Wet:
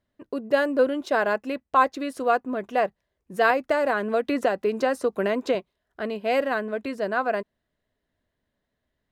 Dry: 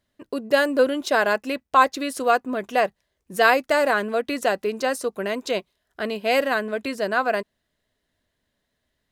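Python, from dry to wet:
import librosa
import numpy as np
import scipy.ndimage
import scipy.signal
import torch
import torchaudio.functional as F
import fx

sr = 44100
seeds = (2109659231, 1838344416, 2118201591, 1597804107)

y = fx.high_shelf(x, sr, hz=2800.0, db=-11.5)
y = fx.band_squash(y, sr, depth_pct=100, at=(3.5, 5.55))
y = y * librosa.db_to_amplitude(-1.5)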